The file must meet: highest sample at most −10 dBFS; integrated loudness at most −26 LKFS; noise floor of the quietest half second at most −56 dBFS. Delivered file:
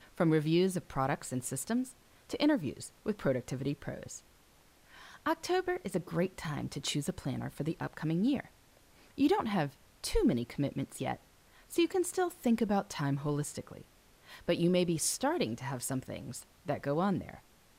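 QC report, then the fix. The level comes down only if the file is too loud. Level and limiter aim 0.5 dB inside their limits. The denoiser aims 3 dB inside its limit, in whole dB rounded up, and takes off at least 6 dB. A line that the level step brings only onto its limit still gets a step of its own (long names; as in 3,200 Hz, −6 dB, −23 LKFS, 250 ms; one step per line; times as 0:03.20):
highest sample −18.0 dBFS: in spec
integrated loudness −33.5 LKFS: in spec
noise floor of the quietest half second −63 dBFS: in spec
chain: no processing needed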